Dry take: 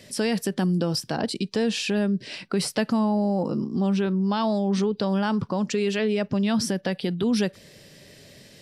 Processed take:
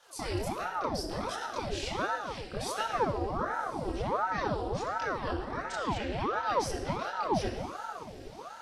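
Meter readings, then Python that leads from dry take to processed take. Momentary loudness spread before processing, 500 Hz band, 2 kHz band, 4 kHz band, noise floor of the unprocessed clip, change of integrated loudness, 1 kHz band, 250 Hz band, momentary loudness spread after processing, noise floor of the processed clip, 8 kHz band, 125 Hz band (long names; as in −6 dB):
4 LU, −7.5 dB, −3.5 dB, −9.0 dB, −51 dBFS, −8.5 dB, +1.5 dB, −16.0 dB, 8 LU, −46 dBFS, −8.5 dB, −10.0 dB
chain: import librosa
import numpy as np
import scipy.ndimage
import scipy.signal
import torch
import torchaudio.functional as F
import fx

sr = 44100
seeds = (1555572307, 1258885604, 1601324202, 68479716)

y = fx.chorus_voices(x, sr, voices=2, hz=0.59, base_ms=27, depth_ms=4.6, mix_pct=55)
y = fx.echo_diffused(y, sr, ms=1127, feedback_pct=42, wet_db=-15)
y = fx.room_shoebox(y, sr, seeds[0], volume_m3=3700.0, walls='mixed', distance_m=2.5)
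y = fx.ring_lfo(y, sr, carrier_hz=630.0, swing_pct=80, hz=1.4)
y = F.gain(torch.from_numpy(y), -6.0).numpy()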